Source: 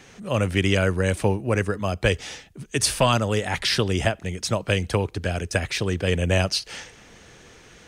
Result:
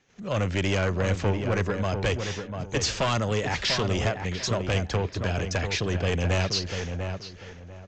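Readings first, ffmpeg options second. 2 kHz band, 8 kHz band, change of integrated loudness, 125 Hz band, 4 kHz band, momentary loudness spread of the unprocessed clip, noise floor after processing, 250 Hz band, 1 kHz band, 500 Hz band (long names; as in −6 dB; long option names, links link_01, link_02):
−3.5 dB, −5.0 dB, −3.5 dB, −2.0 dB, −3.0 dB, 8 LU, −44 dBFS, −3.5 dB, −3.0 dB, −3.5 dB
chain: -filter_complex "[0:a]agate=range=-19dB:threshold=-46dB:ratio=16:detection=peak,aresample=16000,asoftclip=type=tanh:threshold=-20dB,aresample=44100,asplit=2[link_01][link_02];[link_02]adelay=694,lowpass=frequency=1800:poles=1,volume=-6dB,asplit=2[link_03][link_04];[link_04]adelay=694,lowpass=frequency=1800:poles=1,volume=0.25,asplit=2[link_05][link_06];[link_06]adelay=694,lowpass=frequency=1800:poles=1,volume=0.25[link_07];[link_01][link_03][link_05][link_07]amix=inputs=4:normalize=0"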